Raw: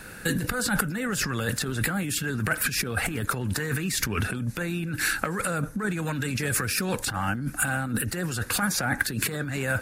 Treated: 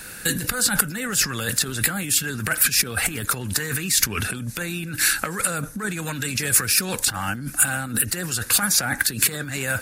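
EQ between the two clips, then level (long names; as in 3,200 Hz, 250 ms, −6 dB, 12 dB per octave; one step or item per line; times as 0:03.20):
high-shelf EQ 2,500 Hz +12 dB
−1.0 dB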